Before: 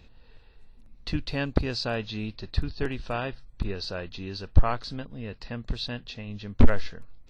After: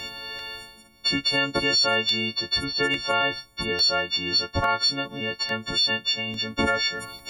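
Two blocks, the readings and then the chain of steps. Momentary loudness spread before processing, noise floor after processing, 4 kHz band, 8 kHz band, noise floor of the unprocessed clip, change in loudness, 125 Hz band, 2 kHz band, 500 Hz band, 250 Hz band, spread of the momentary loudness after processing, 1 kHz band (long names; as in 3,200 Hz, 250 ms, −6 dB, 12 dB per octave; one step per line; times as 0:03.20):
13 LU, −51 dBFS, +16.0 dB, can't be measured, −53 dBFS, +7.5 dB, −7.5 dB, +12.0 dB, +4.5 dB, +0.5 dB, 9 LU, +8.5 dB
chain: every partial snapped to a pitch grid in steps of 4 semitones
high-pass filter 460 Hz 6 dB per octave
reversed playback
upward compression, threshold −37 dBFS
reversed playback
brickwall limiter −22 dBFS, peak gain reduction 8.5 dB
in parallel at −2 dB: downward compressor, threshold −40 dBFS, peak gain reduction 12.5 dB
on the sum: regular buffer underruns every 0.85 s, samples 64, repeat, from 0:00.39
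level +7 dB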